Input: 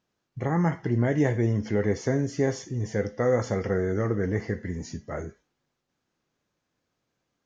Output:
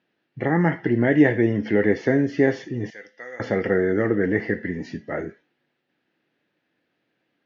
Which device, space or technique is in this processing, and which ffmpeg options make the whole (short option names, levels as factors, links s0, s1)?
kitchen radio: -filter_complex "[0:a]asettb=1/sr,asplit=3[s0][s1][s2];[s0]atrim=end=2.904[s3];[s1]atrim=start=2.9:end=3.4,asetpts=PTS-STARTPTS,afade=t=in:d=0.004:c=qsin,afade=t=out:st=0.496:d=0.004:c=qsin,aderivative[s4];[s2]atrim=start=3.396[s5];[s3][s4]acrossfade=d=0.004:c1=hsin:c2=qsin[s6];[s6][s5]acrossfade=d=0.004:c1=qsin:c2=hsin,highpass=170,equalizer=f=310:t=q:w=4:g=5,equalizer=f=1100:t=q:w=4:g=-8,equalizer=f=1800:t=q:w=4:g=7,equalizer=f=2700:t=q:w=4:g=4,lowpass=f=4000:w=0.5412,lowpass=f=4000:w=1.3066,volume=1.88"